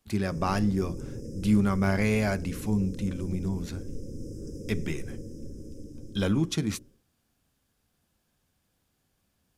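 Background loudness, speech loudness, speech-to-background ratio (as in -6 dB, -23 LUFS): -41.0 LUFS, -29.0 LUFS, 12.0 dB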